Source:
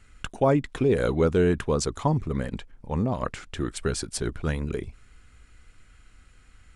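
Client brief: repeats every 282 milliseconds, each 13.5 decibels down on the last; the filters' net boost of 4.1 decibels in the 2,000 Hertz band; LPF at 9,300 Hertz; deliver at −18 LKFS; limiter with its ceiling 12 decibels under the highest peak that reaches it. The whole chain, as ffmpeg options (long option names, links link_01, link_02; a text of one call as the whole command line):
ffmpeg -i in.wav -af "lowpass=9300,equalizer=frequency=2000:width_type=o:gain=5.5,alimiter=limit=-21dB:level=0:latency=1,aecho=1:1:282|564:0.211|0.0444,volume=14dB" out.wav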